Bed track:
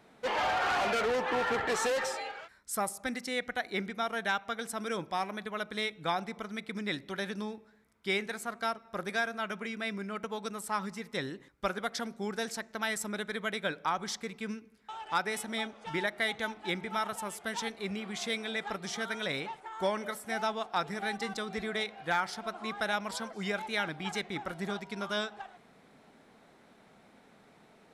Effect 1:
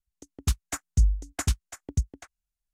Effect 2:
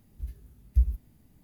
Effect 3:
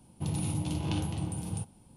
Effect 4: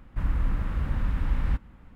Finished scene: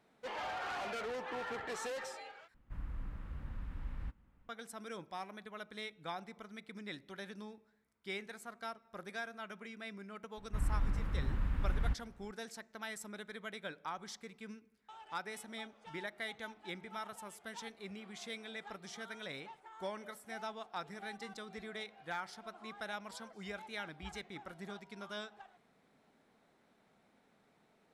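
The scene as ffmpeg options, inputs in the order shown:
-filter_complex "[4:a]asplit=2[a][b];[0:a]volume=-11dB[c];[2:a]bandpass=f=300:t=q:w=2.1:csg=0[d];[c]asplit=2[e][f];[e]atrim=end=2.544[g];[a]atrim=end=1.95,asetpts=PTS-STARTPTS,volume=-17dB[h];[f]atrim=start=4.486[i];[b]atrim=end=1.95,asetpts=PTS-STARTPTS,volume=-8dB,afade=t=in:d=0.004:c=hsin,afade=t=out:st=1.946:d=0.004:c=hsin,adelay=10370[j];[d]atrim=end=1.43,asetpts=PTS-STARTPTS,volume=-11.5dB,afade=t=in:d=0.004:c=hsin,afade=t=out:st=1.426:d=0.004:c=hsin,adelay=23260[k];[g][h]acrossfade=d=0.004:c1=hsin:c2=hsin[l];[l][i]acrossfade=d=0.004:c1=hsin:c2=hsin[m];[m][j][k]amix=inputs=3:normalize=0"

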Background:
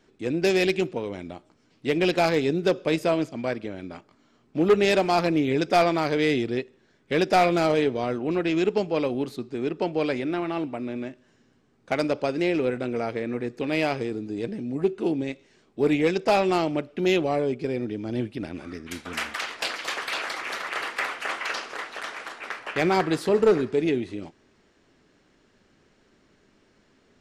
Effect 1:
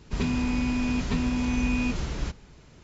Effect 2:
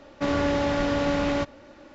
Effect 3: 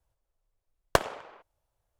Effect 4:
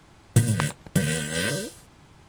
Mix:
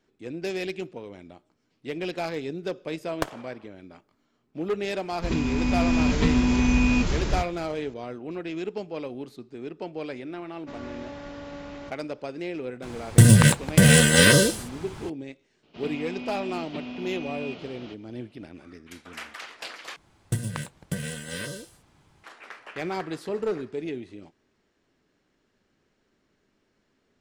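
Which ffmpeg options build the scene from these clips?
-filter_complex "[1:a]asplit=2[a][b];[4:a]asplit=2[c][d];[0:a]volume=-9dB[e];[a]dynaudnorm=f=410:g=3:m=6dB[f];[c]alimiter=level_in=14dB:limit=-1dB:release=50:level=0:latency=1[g];[b]highpass=240,equalizer=f=660:t=q:w=4:g=8,equalizer=f=1k:t=q:w=4:g=-5,equalizer=f=1.7k:t=q:w=4:g=-6,equalizer=f=3k:t=q:w=4:g=7,lowpass=f=4.4k:w=0.5412,lowpass=f=4.4k:w=1.3066[h];[e]asplit=2[i][j];[i]atrim=end=19.964[k];[d]atrim=end=2.28,asetpts=PTS-STARTPTS,volume=-8dB[l];[j]atrim=start=22.236[m];[3:a]atrim=end=1.99,asetpts=PTS-STARTPTS,volume=-6dB,afade=t=in:d=0.004:c=hsin,afade=t=out:st=1.986:d=0.004:c=hsin,adelay=2270[n];[f]atrim=end=2.83,asetpts=PTS-STARTPTS,volume=-1dB,afade=t=in:d=0.004:c=hsin,afade=t=out:st=2.826:d=0.004:c=hsin,adelay=5110[o];[2:a]atrim=end=1.94,asetpts=PTS-STARTPTS,volume=-15dB,afade=t=in:d=0.004:c=hsin,afade=t=out:st=1.936:d=0.004:c=hsin,adelay=10460[p];[g]atrim=end=2.28,asetpts=PTS-STARTPTS,volume=-2.5dB,afade=t=in:d=0.004:c=hsin,afade=t=out:st=2.276:d=0.004:c=hsin,adelay=12820[q];[h]atrim=end=2.83,asetpts=PTS-STARTPTS,volume=-7dB,afade=t=in:d=0.004:c=hsin,afade=t=out:st=2.826:d=0.004:c=hsin,adelay=15630[r];[k][l]acrossfade=d=0.004:c1=hsin:c2=hsin[s];[s][m]acrossfade=d=0.004:c1=hsin:c2=hsin[t];[t][n][o][p][q][r]amix=inputs=6:normalize=0"

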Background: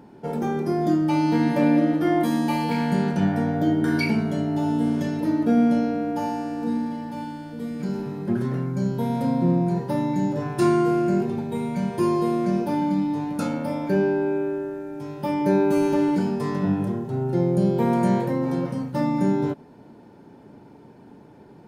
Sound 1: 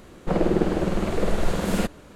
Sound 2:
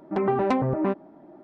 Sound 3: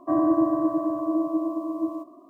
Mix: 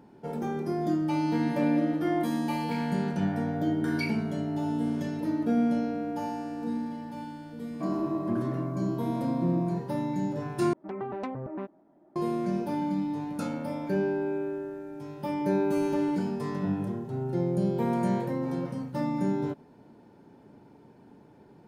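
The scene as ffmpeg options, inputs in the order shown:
-filter_complex "[0:a]volume=-6.5dB,asplit=2[a][b];[a]atrim=end=10.734[c];[2:a]atrim=end=1.43,asetpts=PTS-STARTPTS,volume=-12dB[d];[b]atrim=start=12.156[e];[3:a]atrim=end=2.29,asetpts=PTS-STARTPTS,volume=-10dB,afade=t=in:d=0.004:c=hsin,afade=t=out:st=2.286:d=0.004:c=hsin,adelay=7730[f];[c][d]acrossfade=d=0.004:c1=hsin:c2=hsin[g];[g][e]acrossfade=d=0.004:c1=hsin:c2=hsin[h];[h][f]amix=inputs=2:normalize=0"

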